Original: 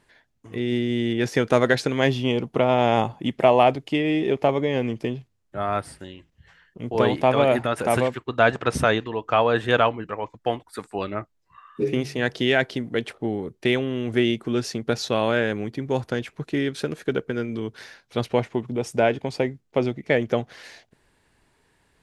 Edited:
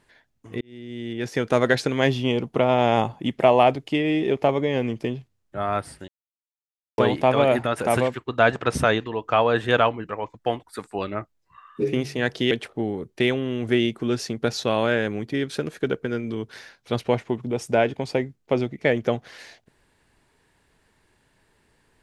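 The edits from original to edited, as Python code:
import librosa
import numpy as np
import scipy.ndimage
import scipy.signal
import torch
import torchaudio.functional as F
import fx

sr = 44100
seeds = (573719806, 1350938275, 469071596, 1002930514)

y = fx.edit(x, sr, fx.fade_in_span(start_s=0.61, length_s=1.12),
    fx.silence(start_s=6.08, length_s=0.9),
    fx.cut(start_s=12.51, length_s=0.45),
    fx.cut(start_s=15.79, length_s=0.8), tone=tone)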